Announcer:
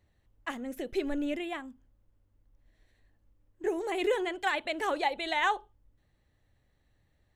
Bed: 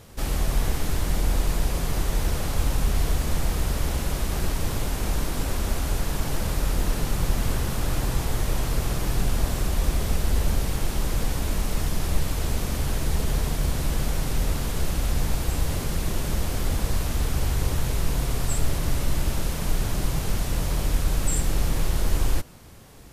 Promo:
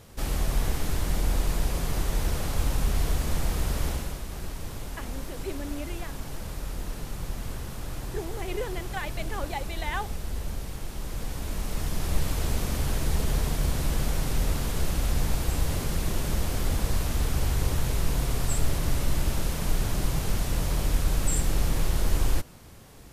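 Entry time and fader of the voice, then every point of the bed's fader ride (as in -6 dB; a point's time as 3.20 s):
4.50 s, -5.0 dB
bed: 3.88 s -2.5 dB
4.22 s -10 dB
10.92 s -10 dB
12.27 s -1.5 dB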